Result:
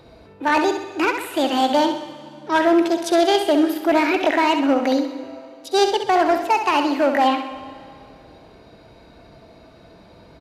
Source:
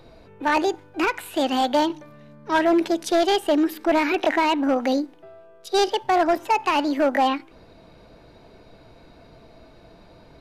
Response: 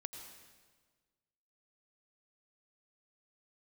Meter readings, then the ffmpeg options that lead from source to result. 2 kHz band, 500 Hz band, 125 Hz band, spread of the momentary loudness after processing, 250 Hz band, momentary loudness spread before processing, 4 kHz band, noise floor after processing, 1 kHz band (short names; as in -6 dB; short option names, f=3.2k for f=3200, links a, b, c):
+3.0 dB, +3.0 dB, n/a, 14 LU, +3.0 dB, 6 LU, +3.0 dB, -48 dBFS, +3.0 dB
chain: -filter_complex "[0:a]highpass=44,aecho=1:1:65|130|195|260|325|390:0.398|0.195|0.0956|0.0468|0.023|0.0112,asplit=2[a][b];[1:a]atrim=start_sample=2205,asetrate=23814,aresample=44100[c];[b][c]afir=irnorm=-1:irlink=0,volume=-11dB[d];[a][d]amix=inputs=2:normalize=0"